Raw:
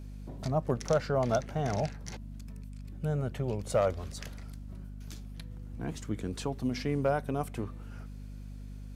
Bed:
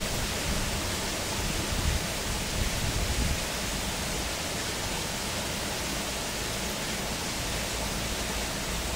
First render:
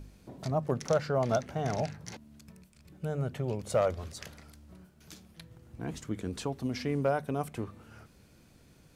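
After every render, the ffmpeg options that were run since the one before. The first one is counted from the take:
-af "bandreject=f=50:t=h:w=4,bandreject=f=100:t=h:w=4,bandreject=f=150:t=h:w=4,bandreject=f=200:t=h:w=4,bandreject=f=250:t=h:w=4"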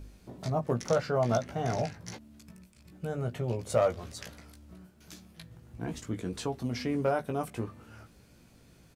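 -filter_complex "[0:a]asplit=2[a][b];[b]adelay=17,volume=-5.5dB[c];[a][c]amix=inputs=2:normalize=0"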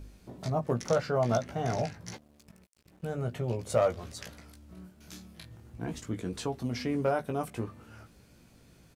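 -filter_complex "[0:a]asettb=1/sr,asplit=3[a][b][c];[a]atrim=end=2.164[d];[b]atrim=start=2.16:end=3.14,asetpts=PTS-STARTPTS,afade=t=in:d=0.004:c=qsin,afade=t=out:st=0.976:d=0.004:c=qsin,aeval=exprs='sgn(val(0))*max(abs(val(0))-0.00178,0)':c=same[e];[c]atrim=start=3.136[f];[d][e]acrossfade=d=0.004:c1=hsin:c2=qsin[g];[g][f]acrossfade=d=0.004:c1=qsin:c2=hsin,asettb=1/sr,asplit=3[h][i][j];[h]atrim=end=4.744[k];[i]atrim=start=4.74:end=5.7,asetpts=PTS-STARTPTS,afade=t=in:d=0.004:c=qsin,afade=t=out:st=0.956:d=0.004:c=qsin,asplit=2[l][m];[m]adelay=27,volume=-4dB[n];[l][n]amix=inputs=2:normalize=0,atrim=end_sample=42336[o];[j]atrim=start=5.696[p];[k][o]acrossfade=d=0.004:c1=hsin:c2=qsin[q];[q][p]acrossfade=d=0.004:c1=qsin:c2=hsin"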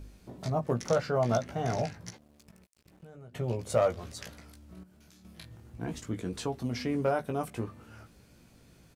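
-filter_complex "[0:a]asettb=1/sr,asplit=3[a][b][c];[a]atrim=end=2.104[d];[b]atrim=start=2.1:end=3.35,asetpts=PTS-STARTPTS,afade=t=in:d=0.004:c=qsin,afade=t=out:st=1.246:d=0.004:c=qsin,acompressor=threshold=-47dB:ratio=6:attack=3.2:release=140:knee=1:detection=peak[e];[c]atrim=start=3.346[f];[d][e]acrossfade=d=0.004:c1=hsin:c2=qsin[g];[g][f]acrossfade=d=0.004:c1=qsin:c2=hsin,asettb=1/sr,asplit=3[h][i][j];[h]atrim=end=4.834[k];[i]atrim=start=4.83:end=5.25,asetpts=PTS-STARTPTS,afade=t=in:d=0.004:c=qsin,afade=t=out:st=0.416:d=0.004:c=qsin,acompressor=threshold=-54dB:ratio=10:attack=3.2:release=140:knee=1:detection=peak[l];[j]atrim=start=5.246[m];[k][l]acrossfade=d=0.004:c1=hsin:c2=qsin[n];[n][m]acrossfade=d=0.004:c1=qsin:c2=hsin"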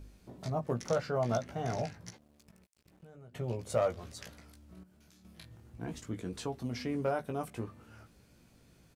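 -af "volume=-4dB"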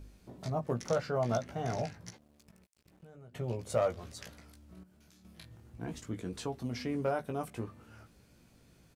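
-af anull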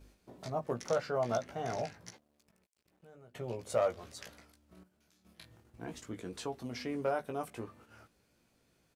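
-af "agate=range=-6dB:threshold=-55dB:ratio=16:detection=peak,bass=f=250:g=-8,treble=f=4k:g=-1"

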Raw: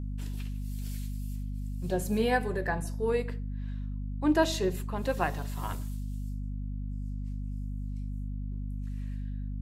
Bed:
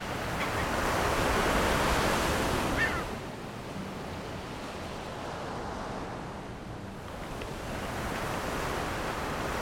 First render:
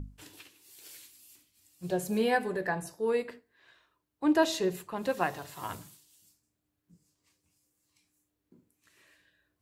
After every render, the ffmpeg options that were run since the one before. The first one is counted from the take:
-af "bandreject=f=50:t=h:w=6,bandreject=f=100:t=h:w=6,bandreject=f=150:t=h:w=6,bandreject=f=200:t=h:w=6,bandreject=f=250:t=h:w=6"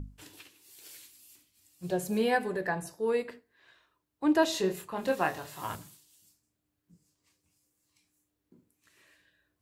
-filter_complex "[0:a]asettb=1/sr,asplit=3[a][b][c];[a]atrim=end=4.534[d];[b]atrim=start=4.53:end=5.76,asetpts=PTS-STARTPTS,afade=t=in:d=0.004:c=qsin,afade=t=out:st=1.226:d=0.004:c=qsin,asplit=2[e][f];[f]adelay=26,volume=-5dB[g];[e][g]amix=inputs=2:normalize=0,atrim=end_sample=54243[h];[c]atrim=start=5.756[i];[d][h]acrossfade=d=0.004:c1=hsin:c2=qsin[j];[j][i]acrossfade=d=0.004:c1=qsin:c2=hsin"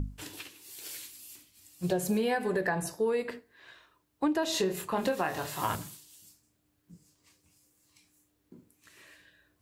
-filter_complex "[0:a]asplit=2[a][b];[b]alimiter=limit=-22dB:level=0:latency=1,volume=3dB[c];[a][c]amix=inputs=2:normalize=0,acompressor=threshold=-25dB:ratio=10"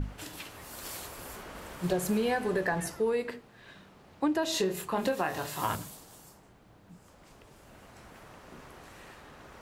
-filter_complex "[1:a]volume=-18dB[a];[0:a][a]amix=inputs=2:normalize=0"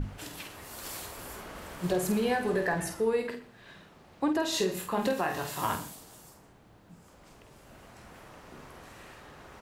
-filter_complex "[0:a]asplit=2[a][b];[b]adelay=49,volume=-7.5dB[c];[a][c]amix=inputs=2:normalize=0,aecho=1:1:122:0.119"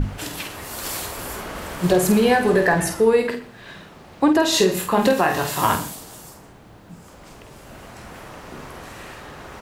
-af "volume=11.5dB"

